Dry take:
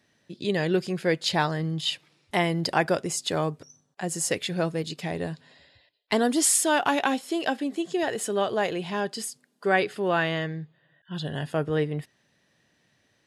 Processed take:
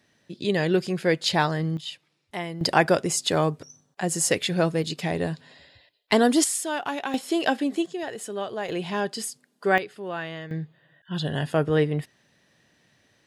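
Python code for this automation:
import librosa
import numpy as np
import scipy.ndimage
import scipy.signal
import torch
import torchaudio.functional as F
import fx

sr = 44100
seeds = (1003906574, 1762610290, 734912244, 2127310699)

y = fx.gain(x, sr, db=fx.steps((0.0, 2.0), (1.77, -8.0), (2.61, 4.0), (6.44, -6.0), (7.14, 3.5), (7.86, -5.5), (8.69, 1.5), (9.78, -8.0), (10.51, 4.0)))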